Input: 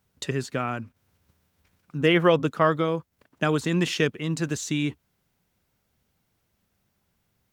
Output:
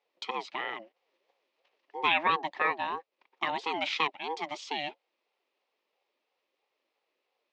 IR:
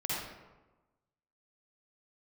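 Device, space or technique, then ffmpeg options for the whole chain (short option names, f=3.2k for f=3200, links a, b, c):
voice changer toy: -af "aeval=exprs='val(0)*sin(2*PI*540*n/s+540*0.2/3*sin(2*PI*3*n/s))':c=same,highpass=550,equalizer=f=680:t=q:w=4:g=-9,equalizer=f=1.5k:t=q:w=4:g=-8,equalizer=f=2.5k:t=q:w=4:g=4,lowpass=f=4.6k:w=0.5412,lowpass=f=4.6k:w=1.3066"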